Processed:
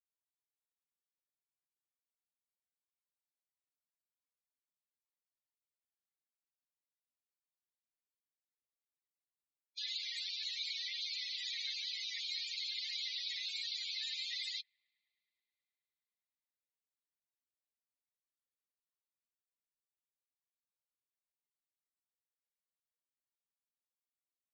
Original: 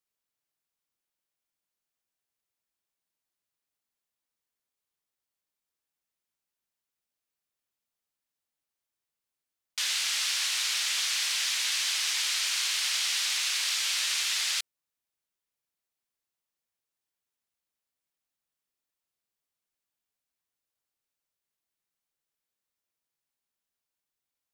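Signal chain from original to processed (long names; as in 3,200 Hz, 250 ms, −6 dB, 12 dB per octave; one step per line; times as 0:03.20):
spectral peaks only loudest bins 32
EQ curve with evenly spaced ripples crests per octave 1, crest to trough 11 dB
delay with a low-pass on its return 106 ms, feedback 83%, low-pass 660 Hz, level −18 dB
level −8 dB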